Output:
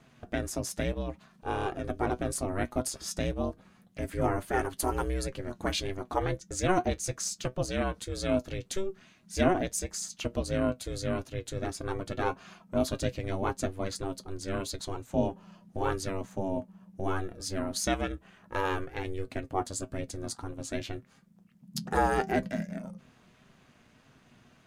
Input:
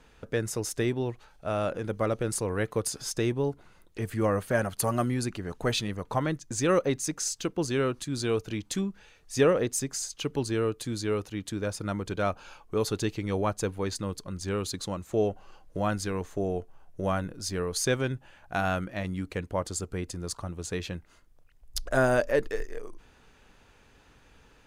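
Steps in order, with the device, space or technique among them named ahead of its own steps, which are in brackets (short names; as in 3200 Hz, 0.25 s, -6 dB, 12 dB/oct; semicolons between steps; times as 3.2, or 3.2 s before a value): alien voice (ring modulator 190 Hz; flange 1.7 Hz, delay 7.4 ms, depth 1.1 ms, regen +58%); bell 75 Hz +3.5 dB; gain +4.5 dB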